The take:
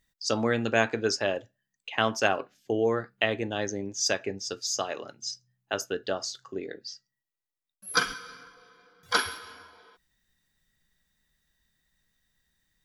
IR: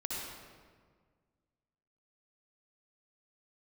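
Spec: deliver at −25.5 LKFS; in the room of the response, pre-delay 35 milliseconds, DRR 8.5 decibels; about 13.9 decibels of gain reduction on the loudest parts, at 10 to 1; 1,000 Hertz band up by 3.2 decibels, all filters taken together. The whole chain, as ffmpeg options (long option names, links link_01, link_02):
-filter_complex "[0:a]equalizer=frequency=1000:width_type=o:gain=4.5,acompressor=threshold=-31dB:ratio=10,asplit=2[link_01][link_02];[1:a]atrim=start_sample=2205,adelay=35[link_03];[link_02][link_03]afir=irnorm=-1:irlink=0,volume=-11dB[link_04];[link_01][link_04]amix=inputs=2:normalize=0,volume=11.5dB"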